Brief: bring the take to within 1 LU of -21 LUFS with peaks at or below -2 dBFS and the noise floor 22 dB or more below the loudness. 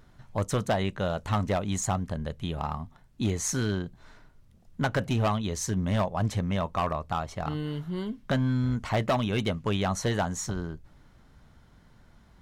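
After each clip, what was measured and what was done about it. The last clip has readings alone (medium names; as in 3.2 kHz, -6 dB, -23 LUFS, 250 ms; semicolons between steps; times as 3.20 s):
clipped samples 1.5%; clipping level -20.0 dBFS; loudness -29.5 LUFS; peak level -20.0 dBFS; loudness target -21.0 LUFS
-> clip repair -20 dBFS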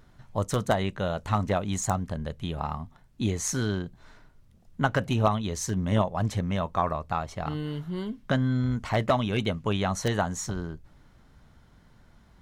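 clipped samples 0.0%; loudness -28.5 LUFS; peak level -11.0 dBFS; loudness target -21.0 LUFS
-> trim +7.5 dB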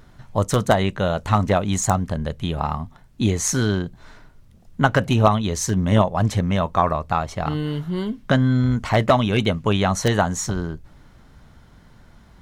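loudness -21.0 LUFS; peak level -3.5 dBFS; noise floor -50 dBFS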